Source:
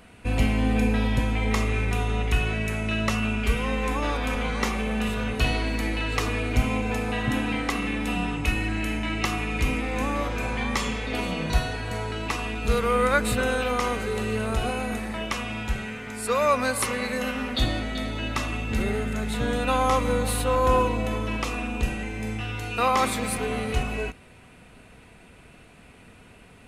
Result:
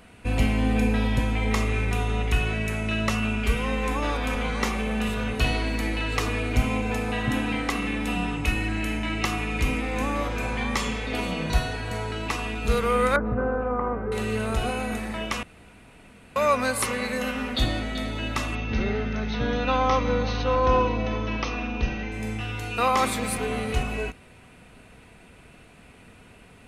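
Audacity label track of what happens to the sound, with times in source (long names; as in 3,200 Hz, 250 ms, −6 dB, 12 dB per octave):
13.160000	14.120000	low-pass filter 1,300 Hz 24 dB per octave
15.430000	16.360000	fill with room tone
18.550000	22.120000	linear-phase brick-wall low-pass 6,400 Hz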